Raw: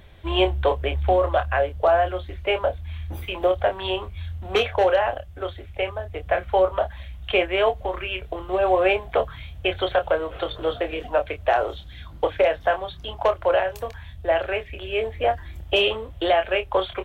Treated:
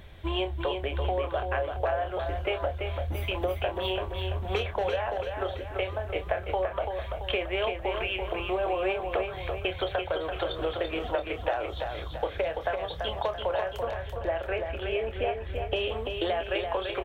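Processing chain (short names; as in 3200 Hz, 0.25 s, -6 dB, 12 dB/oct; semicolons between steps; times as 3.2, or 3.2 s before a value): 13.75–15.92 high shelf 3800 Hz -9.5 dB; compressor, threshold -27 dBFS, peak gain reduction 12.5 dB; feedback echo 0.337 s, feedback 48%, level -5.5 dB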